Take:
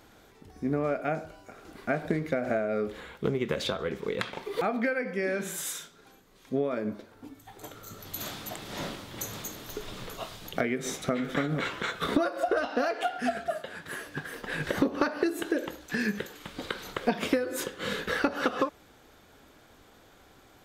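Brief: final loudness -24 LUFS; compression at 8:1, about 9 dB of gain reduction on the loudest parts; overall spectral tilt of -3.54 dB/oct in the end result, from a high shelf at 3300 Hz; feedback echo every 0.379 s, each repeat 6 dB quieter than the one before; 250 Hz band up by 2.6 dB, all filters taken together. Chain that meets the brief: bell 250 Hz +3 dB; high shelf 3300 Hz +8 dB; compressor 8:1, threshold -28 dBFS; feedback echo 0.379 s, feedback 50%, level -6 dB; gain +9 dB

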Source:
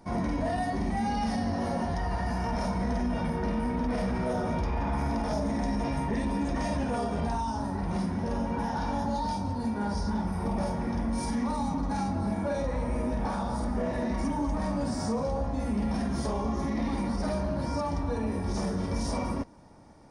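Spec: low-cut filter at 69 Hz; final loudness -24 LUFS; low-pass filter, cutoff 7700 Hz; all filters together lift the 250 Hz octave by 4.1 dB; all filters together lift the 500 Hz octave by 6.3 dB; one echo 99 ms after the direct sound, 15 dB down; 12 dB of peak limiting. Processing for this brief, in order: HPF 69 Hz; LPF 7700 Hz; bell 250 Hz +3.5 dB; bell 500 Hz +7 dB; limiter -26 dBFS; echo 99 ms -15 dB; gain +9.5 dB

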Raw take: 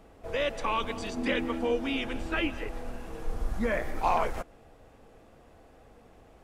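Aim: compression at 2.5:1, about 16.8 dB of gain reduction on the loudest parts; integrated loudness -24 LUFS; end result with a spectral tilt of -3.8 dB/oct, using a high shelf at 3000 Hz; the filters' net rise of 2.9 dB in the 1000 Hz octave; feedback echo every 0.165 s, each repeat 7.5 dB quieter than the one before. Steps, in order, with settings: bell 1000 Hz +4 dB; high shelf 3000 Hz -4.5 dB; compressor 2.5:1, threshold -45 dBFS; feedback echo 0.165 s, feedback 42%, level -7.5 dB; gain +19 dB

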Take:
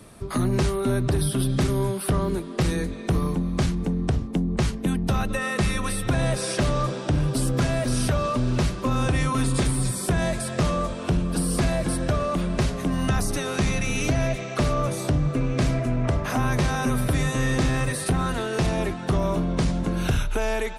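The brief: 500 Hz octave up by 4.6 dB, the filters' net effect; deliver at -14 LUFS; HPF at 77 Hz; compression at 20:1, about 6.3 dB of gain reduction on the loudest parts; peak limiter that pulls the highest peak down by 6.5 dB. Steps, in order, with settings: HPF 77 Hz; bell 500 Hz +6 dB; compressor 20:1, threshold -23 dBFS; gain +15 dB; limiter -4.5 dBFS

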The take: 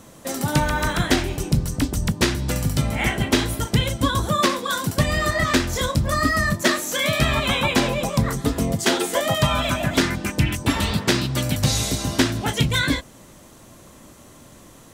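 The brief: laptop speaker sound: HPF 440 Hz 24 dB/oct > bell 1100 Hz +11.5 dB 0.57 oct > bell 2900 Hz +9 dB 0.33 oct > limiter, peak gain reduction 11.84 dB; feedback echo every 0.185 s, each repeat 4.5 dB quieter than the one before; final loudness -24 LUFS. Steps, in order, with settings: HPF 440 Hz 24 dB/oct; bell 1100 Hz +11.5 dB 0.57 oct; bell 2900 Hz +9 dB 0.33 oct; feedback echo 0.185 s, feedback 60%, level -4.5 dB; gain -2 dB; limiter -15.5 dBFS

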